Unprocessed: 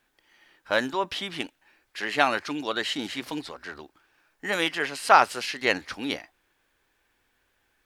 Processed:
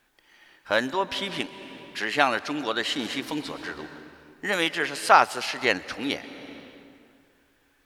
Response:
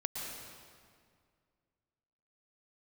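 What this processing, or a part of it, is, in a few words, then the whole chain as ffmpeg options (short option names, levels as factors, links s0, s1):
ducked reverb: -filter_complex "[0:a]asplit=3[s0][s1][s2];[1:a]atrim=start_sample=2205[s3];[s1][s3]afir=irnorm=-1:irlink=0[s4];[s2]apad=whole_len=346566[s5];[s4][s5]sidechaincompress=threshold=0.0282:ratio=10:attack=6.2:release=534,volume=0.631[s6];[s0][s6]amix=inputs=2:normalize=0"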